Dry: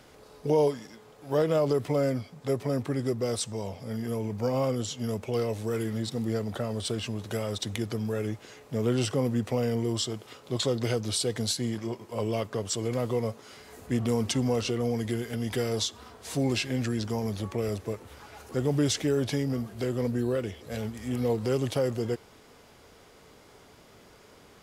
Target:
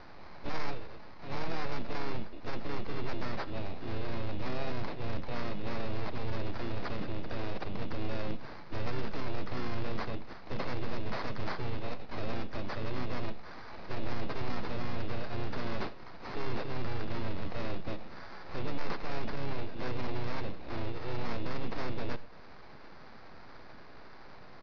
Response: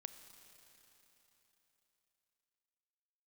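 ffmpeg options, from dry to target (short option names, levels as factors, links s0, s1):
-filter_complex "[0:a]highpass=f=77:w=0.5412,highpass=f=77:w=1.3066,acrossover=split=440[s0][s1];[s1]acompressor=threshold=0.00398:ratio=2[s2];[s0][s2]amix=inputs=2:normalize=0,acrossover=split=1000[s3][s4];[s3]aeval=exprs='abs(val(0))':c=same[s5];[s5][s4]amix=inputs=2:normalize=0,acrusher=samples=14:mix=1:aa=0.000001,aresample=11025,asoftclip=type=tanh:threshold=0.0251,aresample=44100,asplit=3[s6][s7][s8];[s7]asetrate=33038,aresample=44100,atempo=1.33484,volume=0.501[s9];[s8]asetrate=52444,aresample=44100,atempo=0.840896,volume=0.282[s10];[s6][s9][s10]amix=inputs=3:normalize=0[s11];[1:a]atrim=start_sample=2205,afade=t=out:st=0.16:d=0.01,atrim=end_sample=7497[s12];[s11][s12]afir=irnorm=-1:irlink=0,volume=2.66"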